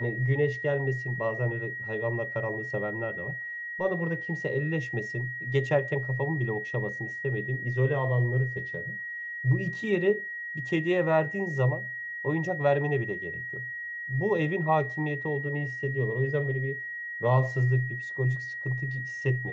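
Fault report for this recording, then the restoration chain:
whistle 1,900 Hz −34 dBFS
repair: notch filter 1,900 Hz, Q 30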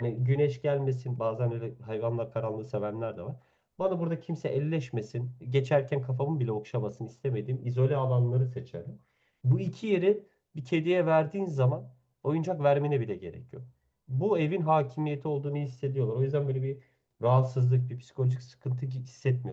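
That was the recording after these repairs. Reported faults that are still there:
none of them is left

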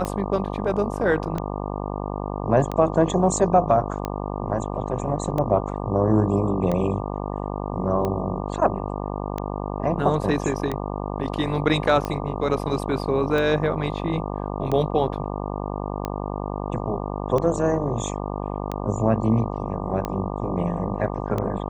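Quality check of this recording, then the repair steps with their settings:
mains buzz 50 Hz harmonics 24 −29 dBFS
scratch tick 45 rpm −14 dBFS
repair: click removal
hum removal 50 Hz, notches 24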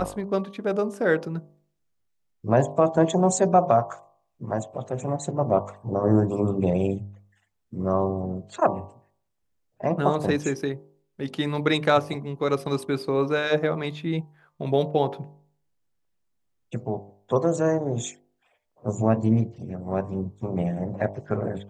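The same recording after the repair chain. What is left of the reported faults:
none of them is left

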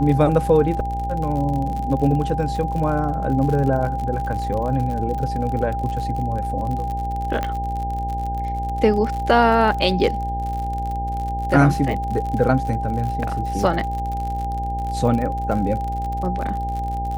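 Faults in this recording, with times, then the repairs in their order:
mains buzz 60 Hz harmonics 16 −27 dBFS
surface crackle 57 per second −27 dBFS
whistle 800 Hz −25 dBFS
0:07.43: click −11 dBFS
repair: click removal
hum removal 60 Hz, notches 16
notch filter 800 Hz, Q 30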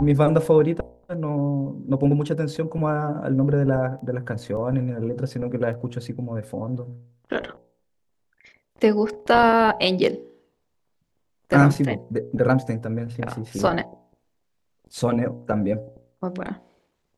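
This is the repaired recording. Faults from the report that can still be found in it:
none of them is left

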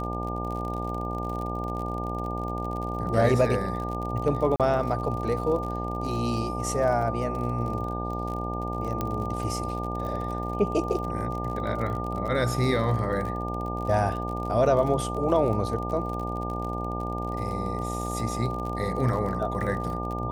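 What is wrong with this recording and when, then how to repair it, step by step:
mains buzz 60 Hz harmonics 15 −32 dBFS
surface crackle 43 per second −33 dBFS
whistle 1,200 Hz −33 dBFS
0:04.56–0:04.60: drop-out 37 ms
0:09.01: click −14 dBFS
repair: click removal
notch filter 1,200 Hz, Q 30
hum removal 60 Hz, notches 15
repair the gap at 0:04.56, 37 ms

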